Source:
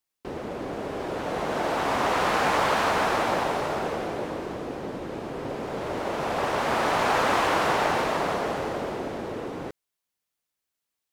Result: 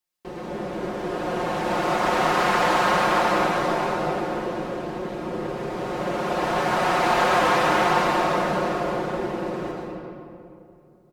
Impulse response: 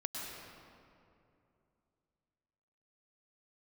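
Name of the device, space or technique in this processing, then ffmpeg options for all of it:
stairwell: -filter_complex "[0:a]aecho=1:1:5.6:0.71[link_01];[1:a]atrim=start_sample=2205[link_02];[link_01][link_02]afir=irnorm=-1:irlink=0"

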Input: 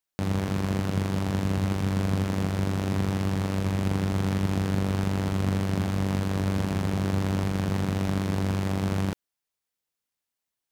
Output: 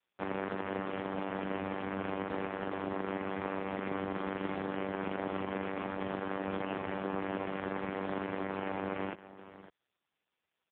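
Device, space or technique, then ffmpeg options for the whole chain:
satellite phone: -af "highpass=350,lowpass=3400,aecho=1:1:555:0.168" -ar 8000 -c:a libopencore_amrnb -b:a 4750

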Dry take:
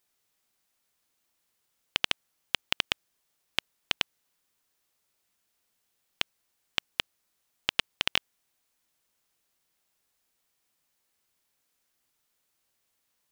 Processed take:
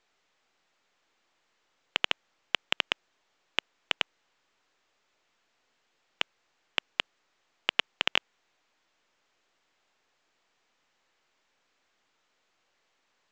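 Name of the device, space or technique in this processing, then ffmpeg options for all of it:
telephone: -af "highpass=300,lowpass=3000,asoftclip=type=tanh:threshold=-10.5dB,volume=5.5dB" -ar 16000 -c:a pcm_mulaw

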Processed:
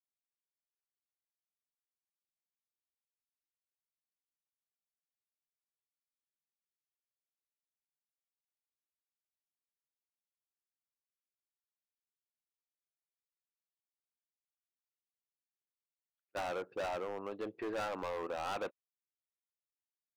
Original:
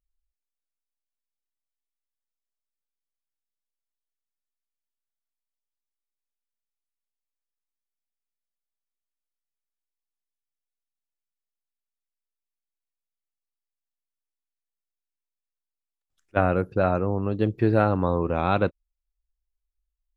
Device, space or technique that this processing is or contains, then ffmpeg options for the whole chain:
walkie-talkie: -af "highpass=530,lowpass=2700,asoftclip=type=hard:threshold=-29dB,agate=range=-17dB:threshold=-51dB:ratio=16:detection=peak,volume=-5.5dB"

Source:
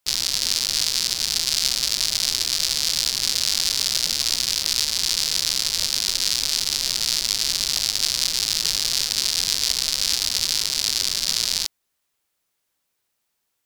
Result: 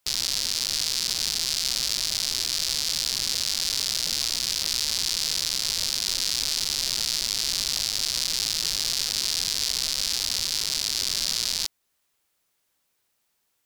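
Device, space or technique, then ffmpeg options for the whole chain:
stacked limiters: -af "alimiter=limit=-5dB:level=0:latency=1:release=443,alimiter=limit=-10.5dB:level=0:latency=1:release=18,volume=2dB"

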